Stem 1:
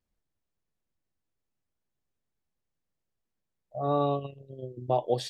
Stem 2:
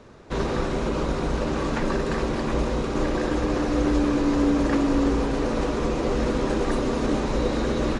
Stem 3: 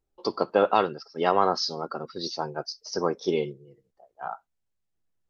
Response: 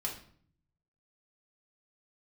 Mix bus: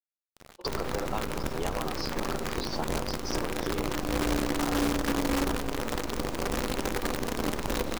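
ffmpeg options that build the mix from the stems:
-filter_complex "[1:a]acrusher=bits=4:dc=4:mix=0:aa=0.000001,adelay=350,volume=0.75,asplit=2[s0][s1];[s1]volume=0.0841[s2];[2:a]agate=range=0.0224:threshold=0.00501:ratio=3:detection=peak,acompressor=threshold=0.0282:ratio=6,adelay=400,volume=1.33[s3];[3:a]atrim=start_sample=2205[s4];[s2][s4]afir=irnorm=-1:irlink=0[s5];[s0][s3][s5]amix=inputs=3:normalize=0,alimiter=limit=0.119:level=0:latency=1:release=126"

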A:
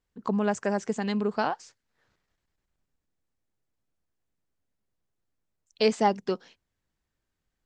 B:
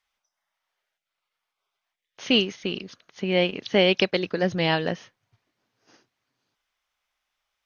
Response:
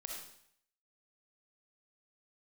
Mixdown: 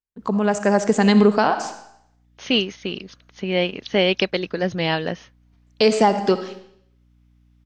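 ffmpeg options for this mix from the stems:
-filter_complex "[0:a]agate=range=0.0794:threshold=0.00158:ratio=16:detection=peak,dynaudnorm=f=160:g=11:m=6.31,volume=1.26,asplit=3[s0][s1][s2];[s1]volume=0.631[s3];[1:a]aeval=exprs='val(0)+0.00158*(sin(2*PI*60*n/s)+sin(2*PI*2*60*n/s)/2+sin(2*PI*3*60*n/s)/3+sin(2*PI*4*60*n/s)/4+sin(2*PI*5*60*n/s)/5)':c=same,adelay=200,volume=1.12[s4];[s2]apad=whole_len=346442[s5];[s4][s5]sidechaincompress=threshold=0.0631:ratio=8:attack=16:release=783[s6];[2:a]atrim=start_sample=2205[s7];[s3][s7]afir=irnorm=-1:irlink=0[s8];[s0][s6][s8]amix=inputs=3:normalize=0,alimiter=limit=0.562:level=0:latency=1:release=275"

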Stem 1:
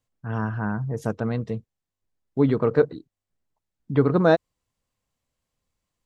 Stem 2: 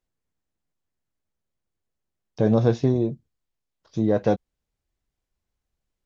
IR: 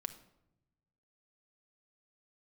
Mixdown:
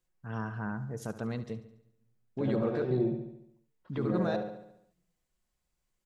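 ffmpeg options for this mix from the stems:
-filter_complex "[0:a]alimiter=limit=0.188:level=0:latency=1:release=16,volume=0.251,asplit=4[s0][s1][s2][s3];[s1]volume=0.447[s4];[s2]volume=0.266[s5];[1:a]aecho=1:1:5.5:0.83,acompressor=threshold=0.1:ratio=6,lowpass=f=2500:w=0.5412,lowpass=f=2500:w=1.3066,volume=0.531,asplit=2[s6][s7];[s7]volume=0.501[s8];[s3]apad=whole_len=267486[s9];[s6][s9]sidechaincompress=threshold=0.00708:ratio=3:attack=8:release=127[s10];[2:a]atrim=start_sample=2205[s11];[s4][s11]afir=irnorm=-1:irlink=0[s12];[s5][s8]amix=inputs=2:normalize=0,aecho=0:1:71|142|213|284|355|426|497|568:1|0.54|0.292|0.157|0.085|0.0459|0.0248|0.0134[s13];[s0][s10][s12][s13]amix=inputs=4:normalize=0,highshelf=f=3000:g=9"

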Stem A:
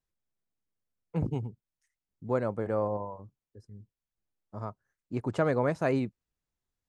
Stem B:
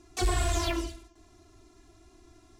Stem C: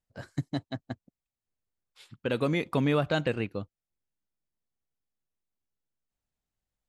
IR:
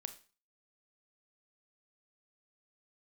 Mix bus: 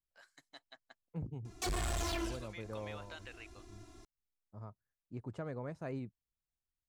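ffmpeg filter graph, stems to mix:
-filter_complex "[0:a]lowshelf=f=150:g=10.5,volume=0.178[s0];[1:a]asoftclip=type=tanh:threshold=0.0251,adelay=1450,volume=0.841,asplit=2[s1][s2];[s2]volume=0.473[s3];[2:a]highpass=1100,acompressor=threshold=0.0224:ratio=6,volume=0.266[s4];[3:a]atrim=start_sample=2205[s5];[s3][s5]afir=irnorm=-1:irlink=0[s6];[s0][s1][s4][s6]amix=inputs=4:normalize=0,alimiter=level_in=2.51:limit=0.0631:level=0:latency=1:release=416,volume=0.398"

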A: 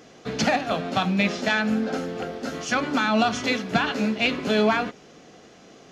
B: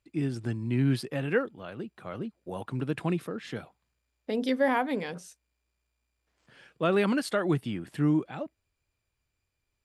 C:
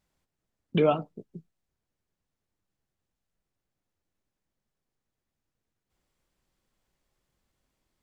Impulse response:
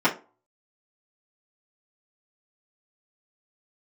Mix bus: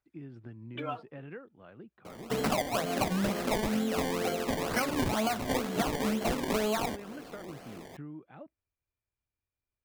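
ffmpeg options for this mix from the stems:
-filter_complex "[0:a]equalizer=f=690:w=0.49:g=5,acrusher=samples=23:mix=1:aa=0.000001:lfo=1:lforange=23:lforate=2.1,adelay=2050,volume=0.794[s0];[1:a]lowpass=2400,acompressor=threshold=0.0316:ratio=6,volume=0.282[s1];[2:a]highpass=390,equalizer=f=1500:t=o:w=0.77:g=8,aphaser=in_gain=1:out_gain=1:delay=5:decay=0.66:speed=0.43:type=triangular,volume=0.188[s2];[s0][s1][s2]amix=inputs=3:normalize=0,acompressor=threshold=0.0501:ratio=10"

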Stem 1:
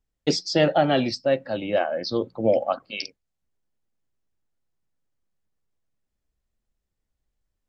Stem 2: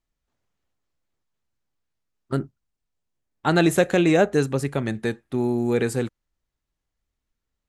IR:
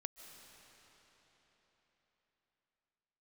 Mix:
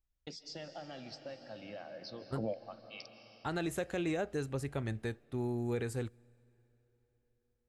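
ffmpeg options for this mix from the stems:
-filter_complex "[0:a]equalizer=f=370:w=1.5:g=-6.5,acompressor=threshold=0.0355:ratio=6,volume=1.06,asplit=2[s0][s1];[s1]volume=0.251[s2];[1:a]lowshelf=f=120:t=q:w=1.5:g=9,volume=0.237,asplit=3[s3][s4][s5];[s4]volume=0.0891[s6];[s5]apad=whole_len=338723[s7];[s0][s7]sidechaingate=range=0.0224:threshold=0.00316:ratio=16:detection=peak[s8];[2:a]atrim=start_sample=2205[s9];[s2][s6]amix=inputs=2:normalize=0[s10];[s10][s9]afir=irnorm=-1:irlink=0[s11];[s8][s3][s11]amix=inputs=3:normalize=0,alimiter=level_in=1.33:limit=0.0631:level=0:latency=1:release=200,volume=0.75"

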